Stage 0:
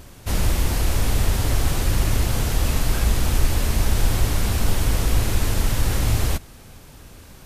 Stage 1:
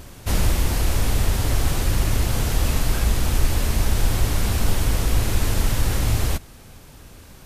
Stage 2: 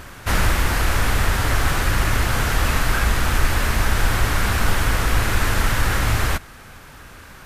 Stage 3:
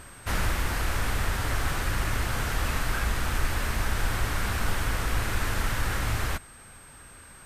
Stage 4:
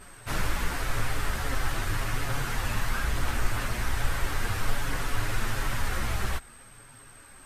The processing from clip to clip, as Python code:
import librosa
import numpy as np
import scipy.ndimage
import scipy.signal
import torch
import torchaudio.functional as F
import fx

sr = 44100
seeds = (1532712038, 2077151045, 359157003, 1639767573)

y1 = fx.rider(x, sr, range_db=3, speed_s=0.5)
y2 = fx.peak_eq(y1, sr, hz=1500.0, db=12.5, octaves=1.6)
y3 = y2 + 10.0 ** (-42.0 / 20.0) * np.sin(2.0 * np.pi * 8300.0 * np.arange(len(y2)) / sr)
y3 = y3 * librosa.db_to_amplitude(-8.5)
y4 = fx.chorus_voices(y3, sr, voices=4, hz=0.38, base_ms=12, depth_ms=5.0, mix_pct=60)
y4 = y4 * librosa.db_to_amplitude(1.0)